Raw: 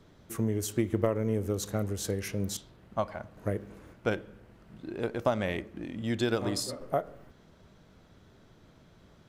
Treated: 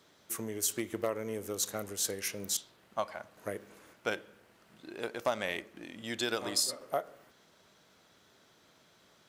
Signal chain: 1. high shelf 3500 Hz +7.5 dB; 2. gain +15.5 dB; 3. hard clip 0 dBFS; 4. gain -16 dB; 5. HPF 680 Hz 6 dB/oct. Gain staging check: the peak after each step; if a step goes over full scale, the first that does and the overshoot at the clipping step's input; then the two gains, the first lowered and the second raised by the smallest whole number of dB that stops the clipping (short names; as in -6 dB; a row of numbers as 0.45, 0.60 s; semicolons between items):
-11.0, +4.5, 0.0, -16.0, -15.5 dBFS; step 2, 4.5 dB; step 2 +10.5 dB, step 4 -11 dB